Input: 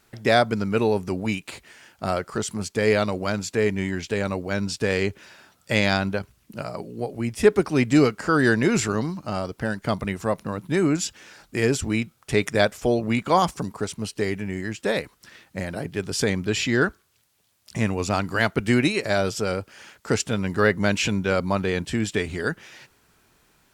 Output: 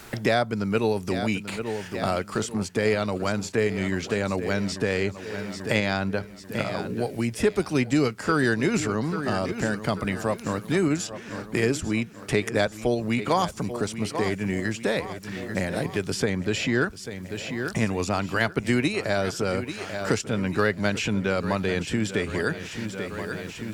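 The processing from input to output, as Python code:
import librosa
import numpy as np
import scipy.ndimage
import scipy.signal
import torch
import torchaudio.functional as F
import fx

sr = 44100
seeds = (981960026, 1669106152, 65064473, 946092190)

p1 = fx.level_steps(x, sr, step_db=10)
p2 = x + F.gain(torch.from_numpy(p1), -2.5).numpy()
p3 = fx.echo_feedback(p2, sr, ms=839, feedback_pct=50, wet_db=-15.0)
p4 = fx.band_squash(p3, sr, depth_pct=70)
y = F.gain(torch.from_numpy(p4), -5.5).numpy()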